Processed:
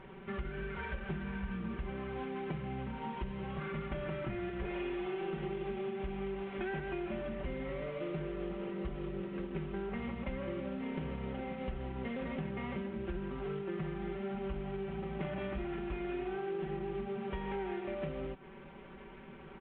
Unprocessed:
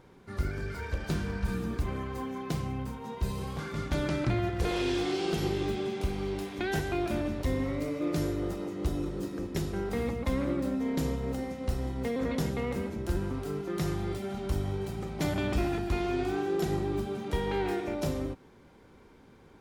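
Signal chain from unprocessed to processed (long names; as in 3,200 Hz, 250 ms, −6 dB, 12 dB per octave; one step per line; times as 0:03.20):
variable-slope delta modulation 16 kbit/s
comb filter 5.2 ms, depth 99%
downward compressor 5 to 1, threshold −39 dBFS, peak gain reduction 16 dB
level +2 dB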